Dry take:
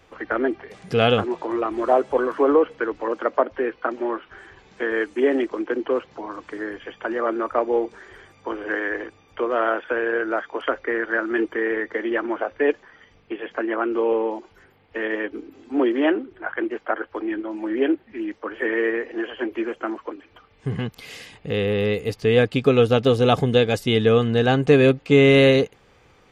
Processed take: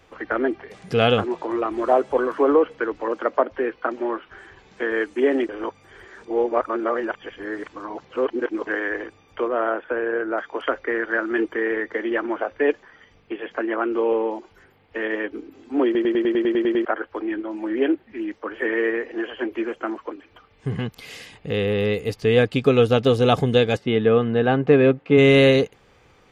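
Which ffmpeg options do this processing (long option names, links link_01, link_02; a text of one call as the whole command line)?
ffmpeg -i in.wav -filter_complex "[0:a]asettb=1/sr,asplit=3[link_01][link_02][link_03];[link_01]atrim=end=9.484[link_04];[link_02]atrim=start=9.48:end=10.38,asetpts=PTS-STARTPTS,afade=type=in:duration=0.004:curve=qsin,afade=type=out:start_time=0.896:duration=0.004:curve=qsin,lowpass=frequency=1400:poles=1[link_05];[link_03]atrim=start=10.376[link_06];[link_04][link_05]acrossfade=duration=0.004:curve1=hsin:curve2=qsin[link_07];[link_07][link_06]acrossfade=duration=0.004:curve1=qsin:curve2=hsin,asplit=3[link_08][link_09][link_10];[link_08]afade=type=out:start_time=23.76:duration=0.02[link_11];[link_09]highpass=130,lowpass=2200,afade=type=in:start_time=23.76:duration=0.02,afade=type=out:start_time=25.17:duration=0.02[link_12];[link_10]afade=type=in:start_time=25.17:duration=0.02[link_13];[link_11][link_12][link_13]amix=inputs=3:normalize=0,asplit=13[link_14][link_15][link_16][link_17][link_18][link_19][link_20][link_21][link_22][link_23][link_24][link_25][link_26];[link_14]atrim=end=5.492[link_27];[link_15]atrim=start=5.488:end=8.672,asetpts=PTS-STARTPTS,areverse[link_28];[link_16]atrim=start=8.668:end=15.952[link_29];[link_17]atrim=start=15.848:end=15.952[link_30];[link_18]atrim=start=15.848:end=15.952[link_31];[link_19]atrim=start=15.848:end=15.952[link_32];[link_20]atrim=start=15.848:end=15.952[link_33];[link_21]atrim=start=15.848:end=15.952[link_34];[link_22]atrim=start=15.848:end=15.952[link_35];[link_23]atrim=start=15.848:end=15.952[link_36];[link_24]atrim=start=15.848:end=15.952[link_37];[link_25]atrim=start=15.848:end=15.952[link_38];[link_26]atrim=start=16.848[link_39];[link_27][link_28]acrossfade=duration=0.004:curve1=hsin:curve2=hsin[link_40];[link_40][link_29]acrossfade=duration=0.004:curve1=hsin:curve2=hsin[link_41];[link_41][link_30]acrossfade=duration=0.004:curve1=hsin:curve2=hsin[link_42];[link_42][link_31]acrossfade=duration=0.004:curve1=hsin:curve2=hsin[link_43];[link_43][link_32]acrossfade=duration=0.004:curve1=hsin:curve2=hsin[link_44];[link_44][link_33]acrossfade=duration=0.004:curve1=hsin:curve2=hsin[link_45];[link_45][link_34]acrossfade=duration=0.004:curve1=hsin:curve2=hsin[link_46];[link_46][link_35]acrossfade=duration=0.004:curve1=hsin:curve2=hsin[link_47];[link_47][link_36]acrossfade=duration=0.004:curve1=hsin:curve2=hsin[link_48];[link_48][link_37]acrossfade=duration=0.004:curve1=hsin:curve2=hsin[link_49];[link_49][link_38]acrossfade=duration=0.004:curve1=hsin:curve2=hsin[link_50];[link_50][link_39]acrossfade=duration=0.004:curve1=hsin:curve2=hsin" out.wav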